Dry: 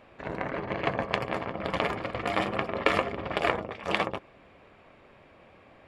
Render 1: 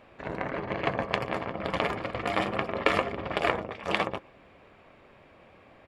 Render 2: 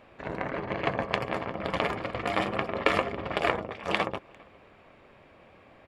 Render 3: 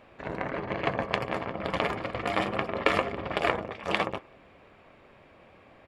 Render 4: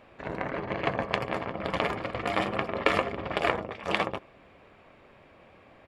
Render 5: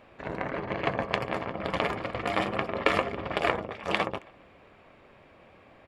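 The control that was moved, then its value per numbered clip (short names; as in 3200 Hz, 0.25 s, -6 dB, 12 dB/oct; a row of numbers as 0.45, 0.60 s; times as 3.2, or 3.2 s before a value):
speakerphone echo, time: 120, 400, 180, 80, 270 ms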